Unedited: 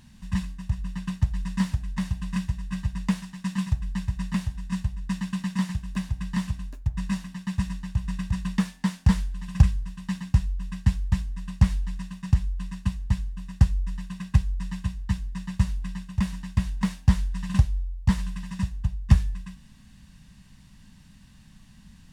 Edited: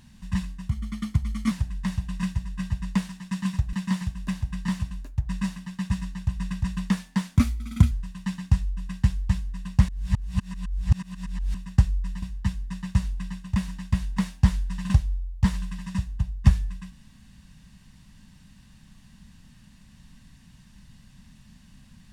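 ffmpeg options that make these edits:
ffmpeg -i in.wav -filter_complex "[0:a]asplit=9[link_01][link_02][link_03][link_04][link_05][link_06][link_07][link_08][link_09];[link_01]atrim=end=0.694[link_10];[link_02]atrim=start=0.69:end=1.64,asetpts=PTS-STARTPTS,asetrate=51156,aresample=44100,atrim=end_sample=36116,asetpts=PTS-STARTPTS[link_11];[link_03]atrim=start=1.636:end=3.862[link_12];[link_04]atrim=start=5.408:end=9.044[link_13];[link_05]atrim=start=9.04:end=9.74,asetpts=PTS-STARTPTS,asetrate=55566,aresample=44100[link_14];[link_06]atrim=start=9.736:end=11.712[link_15];[link_07]atrim=start=11.708:end=13.372,asetpts=PTS-STARTPTS,areverse[link_16];[link_08]atrim=start=13.368:end=14.052[link_17];[link_09]atrim=start=14.868[link_18];[link_10][link_11]acrossfade=duration=0.004:curve1=hsin:curve2=hsin[link_19];[link_19][link_12]acrossfade=duration=0.004:curve1=hsin:curve2=hsin[link_20];[link_20][link_13]acrossfade=duration=0.004:curve1=hsin:curve2=hsin[link_21];[link_21][link_14]acrossfade=duration=0.004:curve1=hsin:curve2=hsin[link_22];[link_22][link_15]acrossfade=duration=0.004:curve1=hsin:curve2=hsin[link_23];[link_23][link_16]acrossfade=duration=0.004:curve1=hsin:curve2=hsin[link_24];[link_24][link_17]acrossfade=duration=0.004:curve1=hsin:curve2=hsin[link_25];[link_25][link_18]acrossfade=duration=0.004:curve1=hsin:curve2=hsin" out.wav

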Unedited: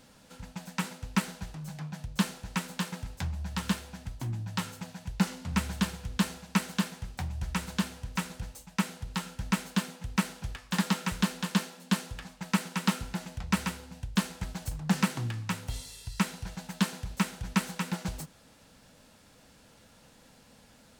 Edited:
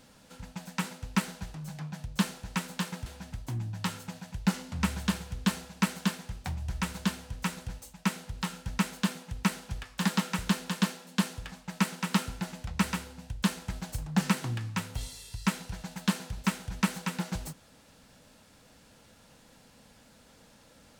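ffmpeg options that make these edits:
ffmpeg -i in.wav -filter_complex "[0:a]asplit=2[link_01][link_02];[link_01]atrim=end=3.062[link_03];[link_02]atrim=start=3.788[link_04];[link_03][link_04]acrossfade=duration=0.004:curve1=hsin:curve2=hsin" out.wav

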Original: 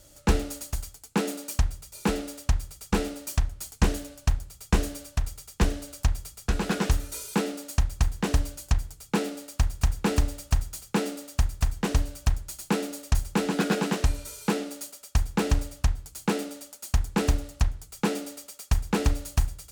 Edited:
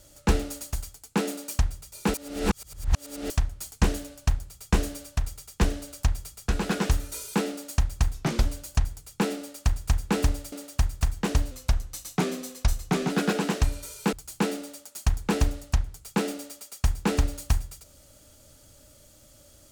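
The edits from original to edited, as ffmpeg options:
ffmpeg -i in.wav -filter_complex "[0:a]asplit=9[link_01][link_02][link_03][link_04][link_05][link_06][link_07][link_08][link_09];[link_01]atrim=end=2.142[link_10];[link_02]atrim=start=2.138:end=3.302,asetpts=PTS-STARTPTS,areverse[link_11];[link_03]atrim=start=3.298:end=8.144[link_12];[link_04]atrim=start=8.14:end=8.39,asetpts=PTS-STARTPTS,asetrate=35280,aresample=44100,atrim=end_sample=13781,asetpts=PTS-STARTPTS[link_13];[link_05]atrim=start=8.386:end=10.462[link_14];[link_06]atrim=start=11.118:end=12.114[link_15];[link_07]atrim=start=12.11:end=13.52,asetpts=PTS-STARTPTS,asetrate=39249,aresample=44100,atrim=end_sample=69866,asetpts=PTS-STARTPTS[link_16];[link_08]atrim=start=13.516:end=14.552[link_17];[link_09]atrim=start=15.998[link_18];[link_10][link_11]acrossfade=duration=0.004:curve1=hsin:curve2=hsin[link_19];[link_19][link_12]acrossfade=duration=0.004:curve1=hsin:curve2=hsin[link_20];[link_20][link_13]acrossfade=duration=0.004:curve1=hsin:curve2=hsin[link_21];[link_21][link_14]acrossfade=duration=0.004:curve1=hsin:curve2=hsin[link_22];[link_22][link_15]acrossfade=duration=0.004:curve1=hsin:curve2=hsin[link_23];[link_23][link_16]acrossfade=duration=0.004:curve1=hsin:curve2=hsin[link_24];[link_24][link_17]acrossfade=duration=0.004:curve1=hsin:curve2=hsin[link_25];[link_25][link_18]acrossfade=duration=0.004:curve1=hsin:curve2=hsin" out.wav

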